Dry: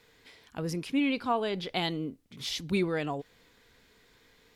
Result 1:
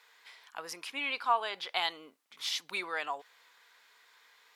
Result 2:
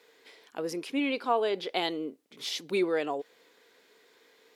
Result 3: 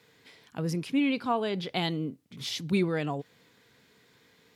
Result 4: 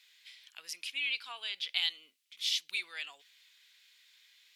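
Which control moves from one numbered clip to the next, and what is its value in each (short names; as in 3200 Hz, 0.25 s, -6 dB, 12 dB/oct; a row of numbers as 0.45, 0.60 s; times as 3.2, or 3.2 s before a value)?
resonant high-pass, frequency: 1000, 400, 130, 2800 Hz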